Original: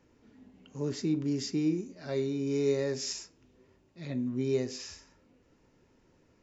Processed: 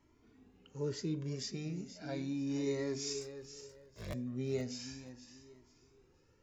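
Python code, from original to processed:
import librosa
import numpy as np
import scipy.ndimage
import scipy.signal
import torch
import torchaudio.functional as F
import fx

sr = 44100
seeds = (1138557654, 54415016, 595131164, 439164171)

y = fx.cycle_switch(x, sr, every=3, mode='inverted', at=(3.21, 4.14))
y = fx.echo_feedback(y, sr, ms=479, feedback_pct=25, wet_db=-12.0)
y = fx.comb_cascade(y, sr, direction='rising', hz=0.36)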